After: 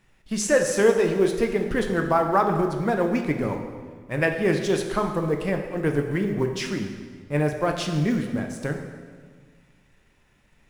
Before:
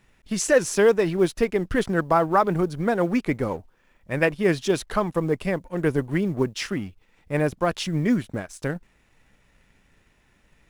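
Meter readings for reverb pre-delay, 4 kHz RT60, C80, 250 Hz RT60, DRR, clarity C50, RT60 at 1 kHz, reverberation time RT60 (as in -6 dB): 5 ms, 1.3 s, 7.5 dB, 1.8 s, 3.5 dB, 6.0 dB, 1.5 s, 1.6 s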